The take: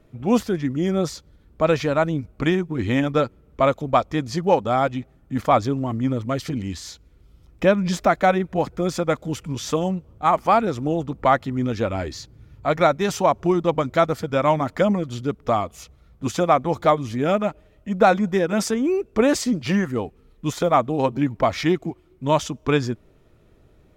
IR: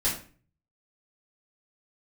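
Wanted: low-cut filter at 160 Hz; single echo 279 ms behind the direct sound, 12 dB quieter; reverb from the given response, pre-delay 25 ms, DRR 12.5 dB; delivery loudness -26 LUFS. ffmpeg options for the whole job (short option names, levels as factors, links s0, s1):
-filter_complex "[0:a]highpass=160,aecho=1:1:279:0.251,asplit=2[s0][s1];[1:a]atrim=start_sample=2205,adelay=25[s2];[s1][s2]afir=irnorm=-1:irlink=0,volume=0.0841[s3];[s0][s3]amix=inputs=2:normalize=0,volume=0.631"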